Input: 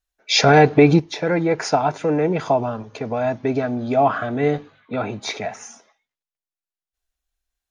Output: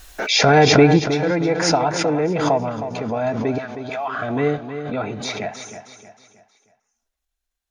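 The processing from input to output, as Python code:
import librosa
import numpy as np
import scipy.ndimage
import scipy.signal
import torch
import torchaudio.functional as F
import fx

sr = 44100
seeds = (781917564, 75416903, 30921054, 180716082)

y = fx.highpass(x, sr, hz=1200.0, slope=12, at=(3.58, 4.15))
y = fx.echo_feedback(y, sr, ms=315, feedback_pct=40, wet_db=-10.0)
y = fx.pre_swell(y, sr, db_per_s=50.0)
y = F.gain(torch.from_numpy(y), -1.0).numpy()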